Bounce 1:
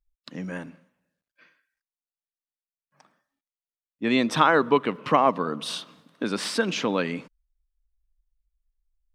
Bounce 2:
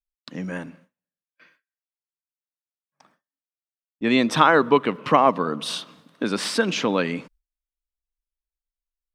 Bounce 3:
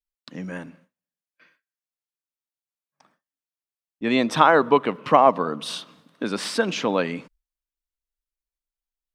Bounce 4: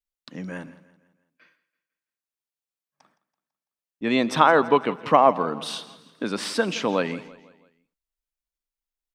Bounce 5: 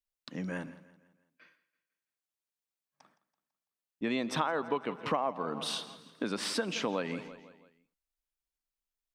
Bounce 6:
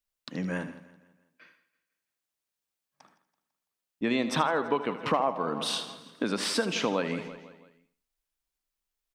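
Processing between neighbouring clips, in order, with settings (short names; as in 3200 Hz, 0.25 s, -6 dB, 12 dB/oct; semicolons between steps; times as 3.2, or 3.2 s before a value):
gate with hold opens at -48 dBFS; gain +3 dB
dynamic EQ 710 Hz, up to +6 dB, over -29 dBFS, Q 1.3; gain -2.5 dB
feedback echo 0.166 s, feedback 46%, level -18 dB; gain -1 dB
compressor 4:1, threshold -27 dBFS, peak gain reduction 14 dB; gain -2.5 dB
feedback echo 77 ms, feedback 28%, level -13 dB; gain +4.5 dB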